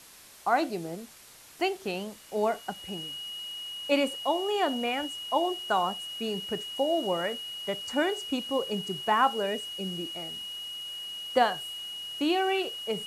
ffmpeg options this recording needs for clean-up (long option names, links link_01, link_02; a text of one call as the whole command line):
ffmpeg -i in.wav -af "bandreject=frequency=2900:width=30,afwtdn=0.0032" out.wav